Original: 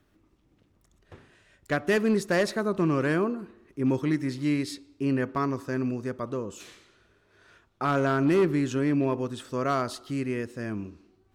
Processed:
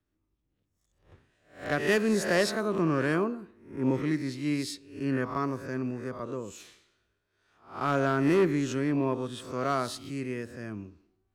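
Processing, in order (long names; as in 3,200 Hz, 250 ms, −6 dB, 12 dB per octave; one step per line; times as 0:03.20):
peak hold with a rise ahead of every peak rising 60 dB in 0.56 s
multiband upward and downward expander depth 40%
level −3 dB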